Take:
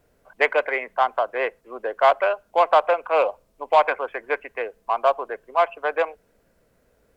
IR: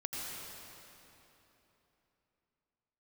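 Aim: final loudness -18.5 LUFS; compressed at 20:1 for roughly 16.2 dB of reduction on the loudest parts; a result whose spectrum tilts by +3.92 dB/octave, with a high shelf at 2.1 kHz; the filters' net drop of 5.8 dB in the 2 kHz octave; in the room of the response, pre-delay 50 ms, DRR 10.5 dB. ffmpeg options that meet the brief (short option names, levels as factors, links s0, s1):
-filter_complex "[0:a]equalizer=f=2000:t=o:g=-4,highshelf=f=2100:g=-6.5,acompressor=threshold=0.0355:ratio=20,asplit=2[s0][s1];[1:a]atrim=start_sample=2205,adelay=50[s2];[s1][s2]afir=irnorm=-1:irlink=0,volume=0.224[s3];[s0][s3]amix=inputs=2:normalize=0,volume=6.68"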